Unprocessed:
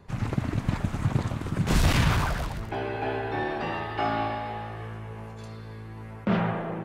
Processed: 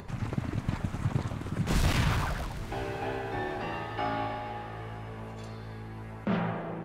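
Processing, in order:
upward compression, threshold −30 dBFS
feedback delay with all-pass diffusion 916 ms, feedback 46%, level −16 dB
level −4.5 dB

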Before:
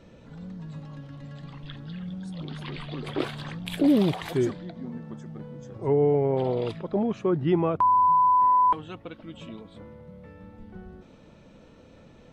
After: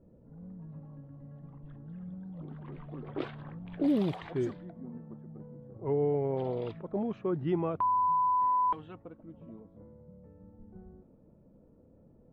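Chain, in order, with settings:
low-pass that shuts in the quiet parts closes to 490 Hz, open at −20 dBFS
high-shelf EQ 3,900 Hz −9 dB
level −7 dB

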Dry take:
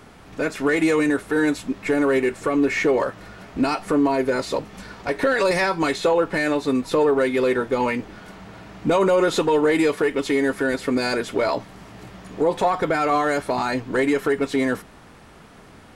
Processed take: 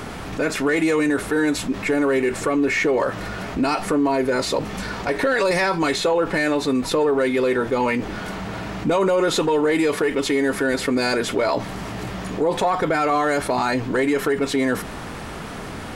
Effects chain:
envelope flattener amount 50%
level −1.5 dB

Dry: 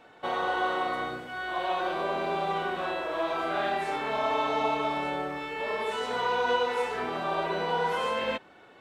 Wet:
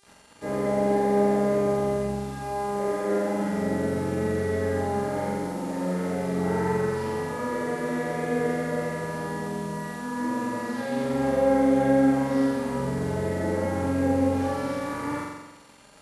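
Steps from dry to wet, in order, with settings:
bit reduction 8 bits
notch comb filter 670 Hz
change of speed 0.55×
hum with harmonics 400 Hz, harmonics 27, −64 dBFS −1 dB per octave
flutter between parallel walls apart 7.6 metres, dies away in 1.1 s

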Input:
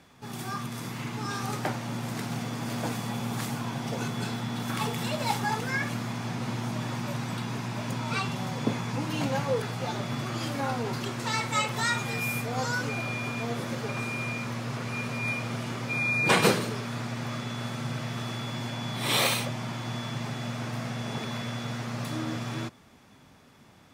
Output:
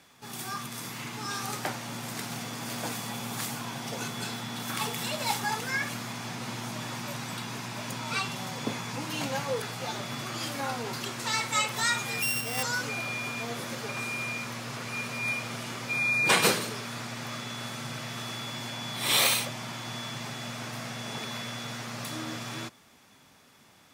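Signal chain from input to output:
0:12.22–0:12.63: samples sorted by size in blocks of 16 samples
spectral tilt +2 dB per octave
level −1.5 dB

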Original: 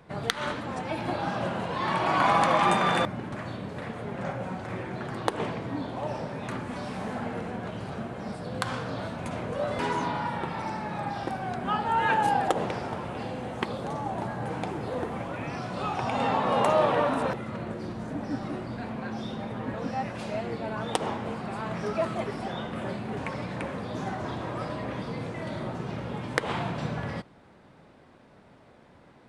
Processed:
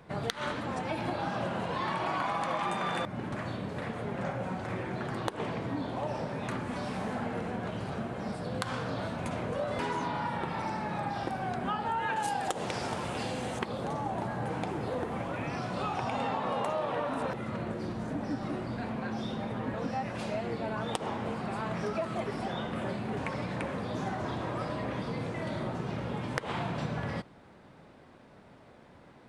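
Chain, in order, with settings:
0:12.16–0:13.59: parametric band 7,900 Hz +13 dB 2.3 octaves
downward compressor 6 to 1, threshold −29 dBFS, peak gain reduction 12 dB

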